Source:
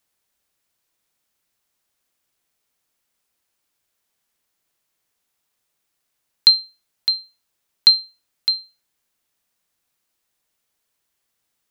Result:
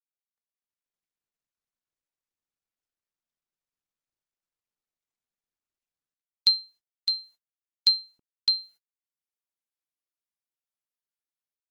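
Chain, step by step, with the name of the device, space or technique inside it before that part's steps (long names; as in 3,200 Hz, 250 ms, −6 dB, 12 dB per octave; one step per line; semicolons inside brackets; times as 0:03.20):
video call (high-pass filter 150 Hz 12 dB per octave; automatic gain control gain up to 13 dB; noise gate −42 dBFS, range −28 dB; level −8.5 dB; Opus 20 kbit/s 48,000 Hz)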